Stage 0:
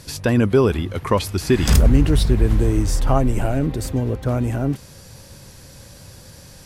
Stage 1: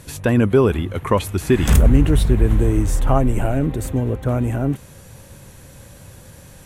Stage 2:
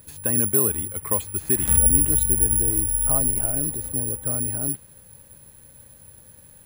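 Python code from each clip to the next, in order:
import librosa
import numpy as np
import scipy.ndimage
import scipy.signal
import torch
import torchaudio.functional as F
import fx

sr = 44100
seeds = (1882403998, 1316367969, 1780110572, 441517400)

y1 = fx.peak_eq(x, sr, hz=4900.0, db=-12.5, octaves=0.51)
y1 = y1 * librosa.db_to_amplitude(1.0)
y2 = (np.kron(scipy.signal.resample_poly(y1, 1, 4), np.eye(4)[0]) * 4)[:len(y1)]
y2 = y2 * librosa.db_to_amplitude(-12.0)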